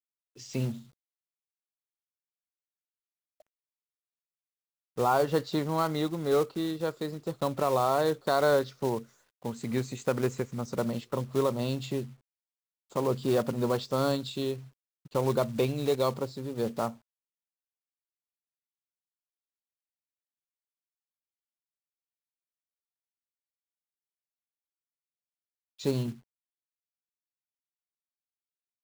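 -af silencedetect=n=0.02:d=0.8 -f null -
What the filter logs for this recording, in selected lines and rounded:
silence_start: 0.73
silence_end: 4.98 | silence_duration: 4.25
silence_start: 12.03
silence_end: 12.96 | silence_duration: 0.92
silence_start: 16.90
silence_end: 25.81 | silence_duration: 8.91
silence_start: 26.11
silence_end: 28.83 | silence_duration: 2.72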